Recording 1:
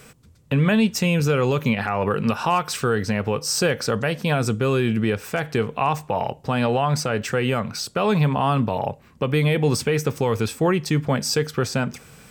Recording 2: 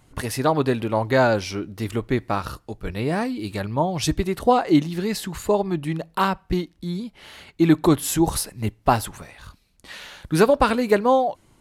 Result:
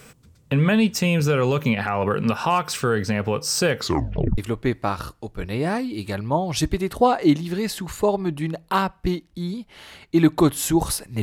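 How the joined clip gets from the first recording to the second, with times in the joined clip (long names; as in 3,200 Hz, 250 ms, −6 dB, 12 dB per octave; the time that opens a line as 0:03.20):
recording 1
0:03.75: tape stop 0.63 s
0:04.38: continue with recording 2 from 0:01.84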